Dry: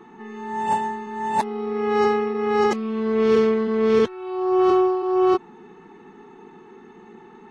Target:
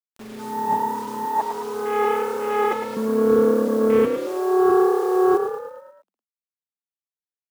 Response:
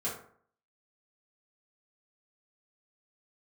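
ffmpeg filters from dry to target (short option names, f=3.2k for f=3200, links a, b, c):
-filter_complex "[0:a]asettb=1/sr,asplit=3[a][b][c];[a]atrim=end=1.254[d];[b]atrim=start=1.25:end=2.97,asetpts=PTS-STARTPTS,afade=t=in:d=0.004:c=qsin,afade=t=out:st=1.716:d=0.004:c=qsin,highpass=410[e];[c]atrim=start=2.966[f];[d][e]acrossfade=d=0.004:c1=hsin:c2=qsin[g];[g][f]acrossfade=d=0.004:c1=qsin:c2=hsin,afwtdn=0.0355,acrusher=bits=6:mix=0:aa=0.000001,asplit=7[h][i][j][k][l][m][n];[i]adelay=108,afreqshift=35,volume=-7dB[o];[j]adelay=216,afreqshift=70,volume=-12.5dB[p];[k]adelay=324,afreqshift=105,volume=-18dB[q];[l]adelay=432,afreqshift=140,volume=-23.5dB[r];[m]adelay=540,afreqshift=175,volume=-29.1dB[s];[n]adelay=648,afreqshift=210,volume=-34.6dB[t];[h][o][p][q][r][s][t]amix=inputs=7:normalize=0"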